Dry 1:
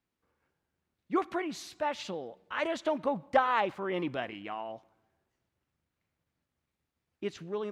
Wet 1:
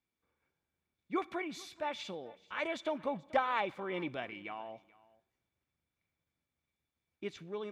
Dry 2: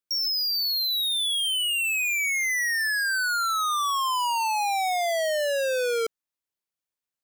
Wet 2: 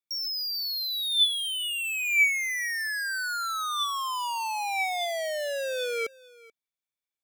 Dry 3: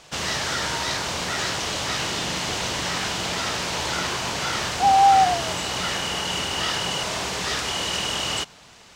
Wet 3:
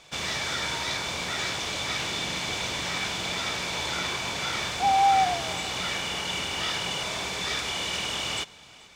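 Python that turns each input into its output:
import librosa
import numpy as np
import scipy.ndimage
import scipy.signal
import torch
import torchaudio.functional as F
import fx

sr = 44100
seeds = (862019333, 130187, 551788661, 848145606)

p1 = fx.small_body(x, sr, hz=(2300.0, 3500.0), ring_ms=40, db=14)
p2 = p1 + fx.echo_single(p1, sr, ms=433, db=-22.5, dry=0)
y = p2 * librosa.db_to_amplitude(-5.5)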